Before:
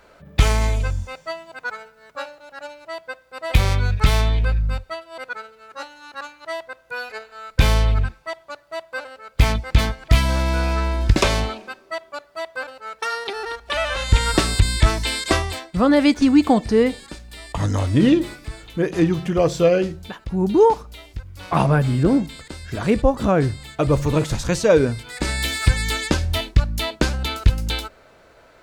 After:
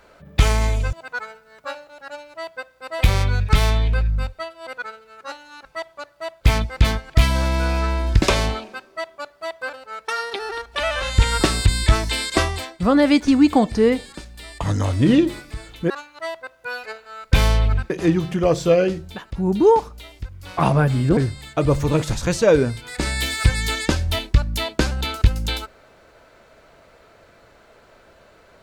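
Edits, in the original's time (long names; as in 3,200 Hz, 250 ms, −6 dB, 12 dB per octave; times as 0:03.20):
0:00.93–0:01.44: remove
0:06.16–0:08.16: move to 0:18.84
0:08.92–0:09.35: remove
0:22.11–0:23.39: remove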